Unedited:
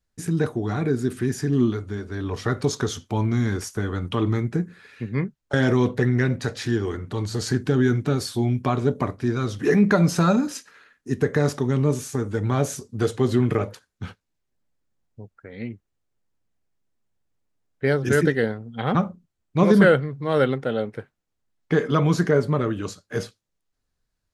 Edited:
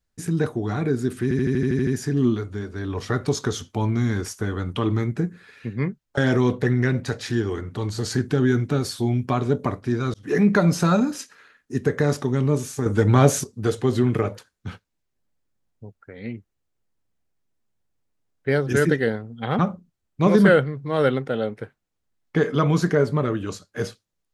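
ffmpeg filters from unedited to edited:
-filter_complex "[0:a]asplit=12[a][b][c][d][e][f][g][h][i][j][k][l];[a]atrim=end=1.312[m];[b]atrim=start=1.228:end=1.312[n];[c]atrim=start=1.228:end=1.312[o];[d]atrim=start=1.228:end=1.312[p];[e]atrim=start=1.228:end=1.312[q];[f]atrim=start=1.228:end=1.312[r];[g]atrim=start=1.228:end=1.312[s];[h]atrim=start=1.228:end=1.312[t];[i]atrim=start=1.228:end=9.5,asetpts=PTS-STARTPTS,afade=t=out:st=8.268:d=0.004:c=hsin[u];[j]atrim=start=9.5:end=12.222,asetpts=PTS-STARTPTS,afade=t=in:d=0.28[v];[k]atrim=start=12.218:end=12.802,asetpts=PTS-STARTPTS,volume=7dB[w];[l]atrim=start=12.798[x];[m][n]acrossfade=d=0.004:c1=hsin:c2=hsin[y];[y][o]acrossfade=d=0.004:c1=hsin:c2=hsin[z];[z][p]acrossfade=d=0.004:c1=hsin:c2=hsin[aa];[aa][q]acrossfade=d=0.004:c1=hsin:c2=hsin[ab];[ab][r]acrossfade=d=0.004:c1=hsin:c2=hsin[ac];[ac][s]acrossfade=d=0.004:c1=hsin:c2=hsin[ad];[ad][t]acrossfade=d=0.004:c1=hsin:c2=hsin[ae];[u][v]concat=n=2:v=0:a=1[af];[ae][af]acrossfade=d=0.004:c1=hsin:c2=hsin[ag];[ag][w]acrossfade=d=0.004:c1=hsin:c2=hsin[ah];[ah][x]acrossfade=d=0.004:c1=hsin:c2=hsin"

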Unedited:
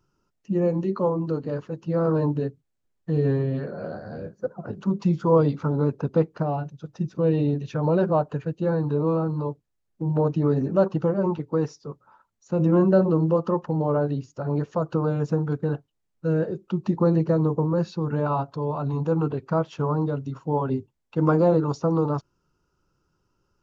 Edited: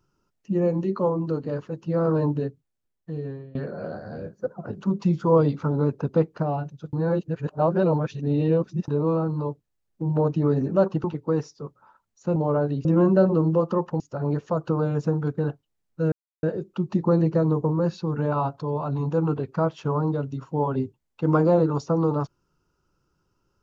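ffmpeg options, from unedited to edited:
-filter_complex "[0:a]asplit=9[a][b][c][d][e][f][g][h][i];[a]atrim=end=3.55,asetpts=PTS-STARTPTS,afade=t=out:st=2.33:d=1.22:silence=0.0707946[j];[b]atrim=start=3.55:end=6.932,asetpts=PTS-STARTPTS,afade=t=in:d=0.004:c=hsin:silence=0.0707946[k];[c]atrim=start=6.928:end=8.882,asetpts=PTS-STARTPTS,areverse[l];[d]atrim=start=8.878:end=11.042[m];[e]atrim=start=11.288:end=12.612[n];[f]atrim=start=13.758:end=14.252[o];[g]atrim=start=12.608:end=13.762[p];[h]atrim=start=14.248:end=16.37,asetpts=PTS-STARTPTS,afade=t=out:st=2.118:d=0.004:c=hsin,apad=pad_dur=0.31[q];[i]atrim=start=16.37,asetpts=PTS-STARTPTS,afade=t=in:d=0.004:c=hsin[r];[j][k]concat=n=2:v=0:a=1[s];[s][l]acrossfade=d=0.004:c1=hsin:c2=hsin[t];[t][m]acrossfade=d=0.004:c1=hsin:c2=hsin[u];[u][n]acrossfade=d=0.004:c1=hsin:c2=hsin[v];[v][o]acrossfade=d=0.004:c1=hsin:c2=hsin[w];[w][p]acrossfade=d=0.004:c1=hsin:c2=hsin[x];[q][r]concat=n=2:v=0:a=1[y];[x][y]acrossfade=d=0.004:c1=hsin:c2=hsin"

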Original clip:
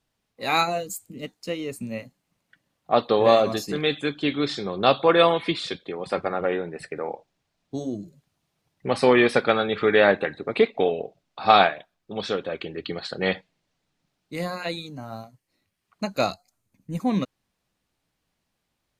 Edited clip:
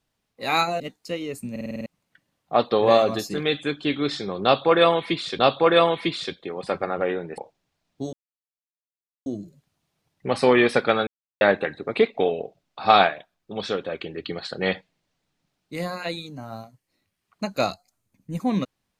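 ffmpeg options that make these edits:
-filter_complex "[0:a]asplit=14[a][b][c][d][e][f][g][h][i][j][k][l][m][n];[a]atrim=end=0.802[o];[b]atrim=start=1.178:end=1.942[p];[c]atrim=start=1.888:end=1.942[q];[d]atrim=start=1.888:end=1.942[r];[e]atrim=start=1.888:end=1.942[s];[f]atrim=start=1.888:end=1.942[t];[g]atrim=start=1.888:end=1.942[u];[h]atrim=start=1.888:end=1.942[v];[i]atrim=start=2.238:end=5.772[w];[j]atrim=start=4.818:end=6.812[x];[k]atrim=start=7.108:end=7.86,asetpts=PTS-STARTPTS,afade=t=out:st=0.748:d=0.004:c=hsin,apad=pad_dur=1.13[y];[l]atrim=start=7.86:end=9.67,asetpts=PTS-STARTPTS,afade=t=in:d=0.004:c=hsin,afade=t=out:st=1.806:d=0.004:c=hsin[z];[m]atrim=start=9.67:end=10.01,asetpts=PTS-STARTPTS,volume=0[aa];[n]atrim=start=10.01,asetpts=PTS-STARTPTS,afade=t=in:d=0.004:c=hsin[ab];[o][p]acrossfade=d=0.004:c1=hsin:c2=hsin[ac];[ac][q]acrossfade=d=0.004:c1=hsin:c2=hsin[ad];[ad][r]acrossfade=d=0.004:c1=hsin:c2=hsin[ae];[ae][s]acrossfade=d=0.004:c1=hsin:c2=hsin[af];[af][t]acrossfade=d=0.004:c1=hsin:c2=hsin[ag];[ag][u]acrossfade=d=0.004:c1=hsin:c2=hsin[ah];[ah][v]acrossfade=d=0.004:c1=hsin:c2=hsin[ai];[ai][w]acrossfade=d=0.004:c1=hsin:c2=hsin[aj];[aj][x]acrossfade=d=0.004:c1=hsin:c2=hsin[ak];[y][z][aa][ab]concat=n=4:v=0:a=1[al];[ak][al]acrossfade=d=0.004:c1=hsin:c2=hsin"

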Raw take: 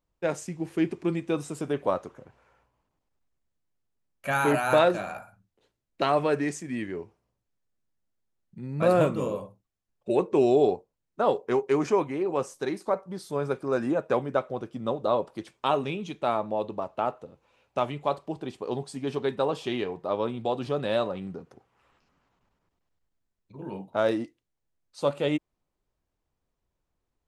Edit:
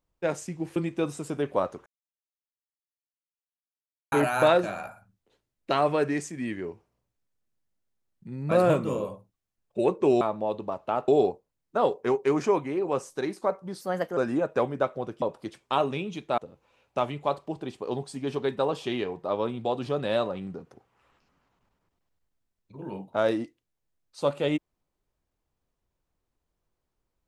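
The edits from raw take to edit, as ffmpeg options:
-filter_complex "[0:a]asplit=10[a][b][c][d][e][f][g][h][i][j];[a]atrim=end=0.762[k];[b]atrim=start=1.068:end=2.17,asetpts=PTS-STARTPTS,afade=t=out:st=1.098:d=0.004:c=hsin[l];[c]atrim=start=2.17:end=4.43,asetpts=PTS-STARTPTS,volume=0[m];[d]atrim=start=4.43:end=10.522,asetpts=PTS-STARTPTS,afade=t=in:d=0.004:c=hsin[n];[e]atrim=start=16.308:end=17.182[o];[f]atrim=start=10.518:end=13.254[p];[g]atrim=start=13.25:end=13.71,asetpts=PTS-STARTPTS,asetrate=56448,aresample=44100,atrim=end_sample=15848,asetpts=PTS-STARTPTS[q];[h]atrim=start=13.706:end=14.762[r];[i]atrim=start=15.148:end=16.312[s];[j]atrim=start=17.178[t];[l][m][n]concat=n=3:v=0:a=1[u];[k][u]acrossfade=d=0.004:c1=hsin:c2=hsin[v];[v][o]acrossfade=d=0.004:c1=hsin:c2=hsin[w];[w][p]acrossfade=d=0.004:c1=hsin:c2=hsin[x];[x][q]acrossfade=d=0.004:c1=hsin:c2=hsin[y];[y][r]acrossfade=d=0.004:c1=hsin:c2=hsin[z];[z][s]acrossfade=d=0.004:c1=hsin:c2=hsin[aa];[aa][t]acrossfade=d=0.004:c1=hsin:c2=hsin"

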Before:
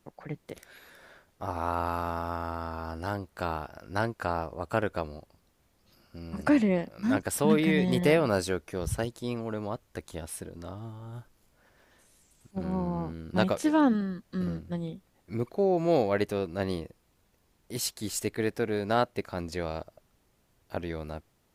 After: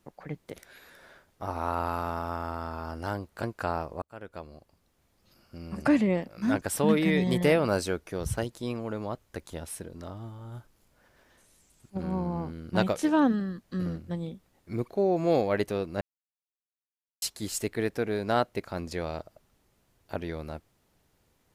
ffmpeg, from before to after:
-filter_complex "[0:a]asplit=5[a][b][c][d][e];[a]atrim=end=3.432[f];[b]atrim=start=4.038:end=4.63,asetpts=PTS-STARTPTS,afade=t=out:st=0.588:d=0.004:c=hsin[g];[c]atrim=start=4.63:end=16.62,asetpts=PTS-STARTPTS,afade=t=in:d=1.58:c=qsin,afade=t=out:st=11.986:d=0.004:c=hsin[h];[d]atrim=start=16.62:end=17.83,asetpts=PTS-STARTPTS,volume=0[i];[e]atrim=start=17.83,asetpts=PTS-STARTPTS,afade=t=in:d=0.004:c=hsin[j];[g][h][i][j]concat=n=4:v=0:a=1[k];[f][k]acrossfade=d=0.004:c1=hsin:c2=hsin"

